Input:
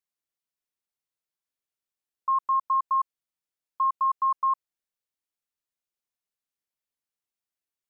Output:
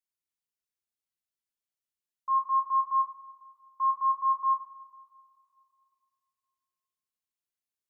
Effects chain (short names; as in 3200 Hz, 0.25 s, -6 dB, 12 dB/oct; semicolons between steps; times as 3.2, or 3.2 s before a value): bell 760 Hz -6 dB 2.3 oct; reverb, pre-delay 3 ms, DRR 0.5 dB; gain -5.5 dB